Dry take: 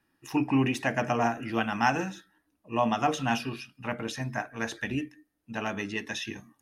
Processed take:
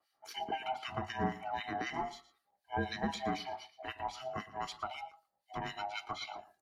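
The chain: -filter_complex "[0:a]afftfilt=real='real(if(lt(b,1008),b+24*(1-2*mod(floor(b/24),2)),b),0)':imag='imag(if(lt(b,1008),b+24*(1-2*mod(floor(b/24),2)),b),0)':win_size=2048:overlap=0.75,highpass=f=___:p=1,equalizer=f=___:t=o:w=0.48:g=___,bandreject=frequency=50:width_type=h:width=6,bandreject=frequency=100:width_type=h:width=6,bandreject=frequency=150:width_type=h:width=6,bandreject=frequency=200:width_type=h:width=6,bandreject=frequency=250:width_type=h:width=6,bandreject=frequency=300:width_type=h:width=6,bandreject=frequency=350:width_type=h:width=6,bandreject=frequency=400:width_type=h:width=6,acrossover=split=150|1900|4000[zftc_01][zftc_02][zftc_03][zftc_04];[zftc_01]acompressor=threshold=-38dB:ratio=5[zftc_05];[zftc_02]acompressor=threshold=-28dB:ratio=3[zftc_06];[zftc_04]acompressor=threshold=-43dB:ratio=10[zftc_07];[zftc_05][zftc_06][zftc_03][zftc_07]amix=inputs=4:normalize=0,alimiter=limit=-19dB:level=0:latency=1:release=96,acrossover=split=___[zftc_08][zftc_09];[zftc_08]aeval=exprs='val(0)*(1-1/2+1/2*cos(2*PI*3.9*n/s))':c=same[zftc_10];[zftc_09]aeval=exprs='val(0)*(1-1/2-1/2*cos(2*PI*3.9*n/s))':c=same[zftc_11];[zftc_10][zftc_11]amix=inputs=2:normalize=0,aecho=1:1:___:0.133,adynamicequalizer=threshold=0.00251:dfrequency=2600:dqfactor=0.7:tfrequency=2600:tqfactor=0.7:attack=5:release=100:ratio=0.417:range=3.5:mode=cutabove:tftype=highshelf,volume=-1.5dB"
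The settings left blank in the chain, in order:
59, 4400, 10, 1600, 115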